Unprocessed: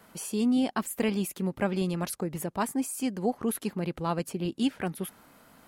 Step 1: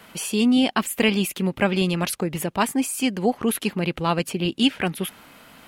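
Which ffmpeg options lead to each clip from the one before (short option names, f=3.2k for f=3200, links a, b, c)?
-af "equalizer=f=2.8k:w=1.2:g=9.5,volume=6.5dB"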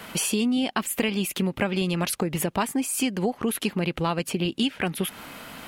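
-af "acompressor=threshold=-30dB:ratio=5,volume=7dB"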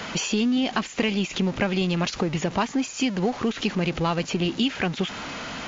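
-af "aeval=exprs='val(0)+0.5*0.0266*sgn(val(0))':c=same" -ar 16000 -c:a wmav2 -b:a 128k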